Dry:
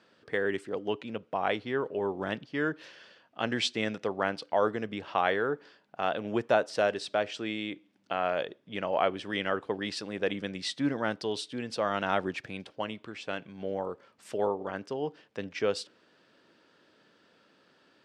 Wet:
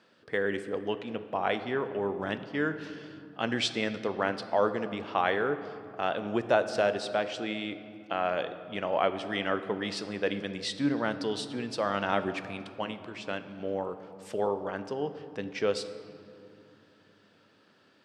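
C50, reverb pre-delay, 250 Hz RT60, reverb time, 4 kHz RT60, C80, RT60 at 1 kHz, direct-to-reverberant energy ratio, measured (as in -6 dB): 11.5 dB, 4 ms, 4.0 s, 2.6 s, 1.4 s, 12.5 dB, 2.5 s, 10.0 dB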